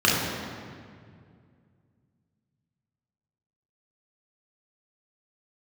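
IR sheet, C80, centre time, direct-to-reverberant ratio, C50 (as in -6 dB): 2.0 dB, 106 ms, -5.5 dB, 0.0 dB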